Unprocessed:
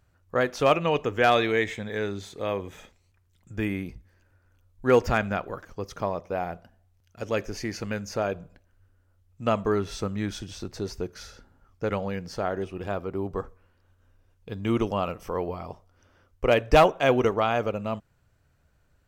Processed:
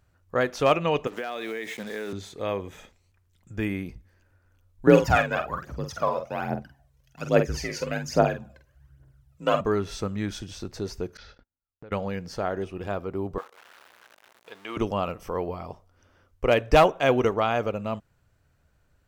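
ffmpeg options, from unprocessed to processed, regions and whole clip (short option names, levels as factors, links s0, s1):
-filter_complex "[0:a]asettb=1/sr,asplit=3[s0][s1][s2];[s0]atrim=end=1.074[s3];[s1]atrim=start=1.07:end=2.13,asetpts=PTS-STARTPTS,afade=t=in:d=0.004:c=qsin,afade=t=out:st=1.056:d=0.004:c=qsin,highpass=f=180:w=0.5412,highpass=f=180:w=1.3066,acrusher=bits=6:mix=0:aa=0.5,acompressor=threshold=0.0398:ratio=12:attack=3.2:release=140:knee=1:detection=peak[s4];[s2]atrim=start=2.126[s5];[s3][s4]acrossfade=d=0.004:c1=hsin:c2=qsin[s6];[s6][s5]acrossfade=d=0.004:c1=qsin:c2=hsin,asettb=1/sr,asplit=3[s7][s8][s9];[s7]atrim=end=4.874[s10];[s8]atrim=start=4.87:end=9.61,asetpts=PTS-STARTPTS,afade=t=in:d=0.004:c=qsin,afade=t=out:st=4.736:d=0.004:c=qsin,afreqshift=44,aphaser=in_gain=1:out_gain=1:delay=2.2:decay=0.7:speed=1.2:type=triangular,asplit=2[s11][s12];[s12]adelay=47,volume=0.422[s13];[s11][s13]amix=inputs=2:normalize=0,atrim=end_sample=209034[s14];[s9]atrim=start=9.606[s15];[s10][s14]acrossfade=d=0.004:c1=hsin:c2=qsin[s16];[s16][s15]acrossfade=d=0.004:c1=qsin:c2=hsin,asettb=1/sr,asplit=3[s17][s18][s19];[s17]atrim=end=11.174[s20];[s18]atrim=start=11.17:end=11.92,asetpts=PTS-STARTPTS,afade=t=in:d=0.004:c=qsin,afade=t=out:st=0.746:d=0.004:c=qsin,lowpass=f=4300:w=0.5412,lowpass=f=4300:w=1.3066,agate=range=0.0141:threshold=0.00316:ratio=16:release=100:detection=peak,acompressor=threshold=0.00708:ratio=6:attack=3.2:release=140:knee=1:detection=peak[s21];[s19]atrim=start=11.916[s22];[s20][s21]acrossfade=d=0.004:c1=hsin:c2=qsin[s23];[s23][s22]acrossfade=d=0.004:c1=qsin:c2=hsin,asettb=1/sr,asplit=3[s24][s25][s26];[s24]atrim=end=13.384[s27];[s25]atrim=start=13.38:end=14.77,asetpts=PTS-STARTPTS,afade=t=in:d=0.004:c=qsin,afade=t=out:st=1.386:d=0.004:c=qsin,aeval=exprs='val(0)+0.5*0.00944*sgn(val(0))':c=same,highpass=720,acrossover=split=4000[s28][s29];[s29]acompressor=threshold=0.00126:ratio=4:attack=1:release=60[s30];[s28][s30]amix=inputs=2:normalize=0[s31];[s26]atrim=start=14.766[s32];[s27][s31]acrossfade=d=0.004:c1=hsin:c2=qsin[s33];[s33][s32]acrossfade=d=0.004:c1=qsin:c2=hsin"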